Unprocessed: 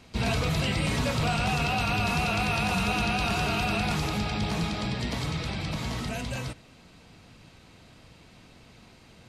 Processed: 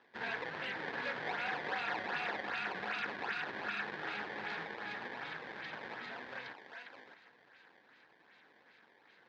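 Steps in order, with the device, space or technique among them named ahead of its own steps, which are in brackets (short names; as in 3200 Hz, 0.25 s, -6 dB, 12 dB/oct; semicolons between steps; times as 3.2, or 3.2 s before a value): 2.4–4.02 band shelf 570 Hz -9 dB; thinning echo 0.616 s, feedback 16%, high-pass 720 Hz, level -4 dB; circuit-bent sampling toy (decimation with a swept rate 19×, swing 160% 2.6 Hz; speaker cabinet 530–4000 Hz, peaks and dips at 640 Hz -8 dB, 1200 Hz -6 dB, 1700 Hz +10 dB, 2800 Hz -5 dB); dynamic EQ 7400 Hz, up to -5 dB, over -51 dBFS, Q 0.71; gain -6.5 dB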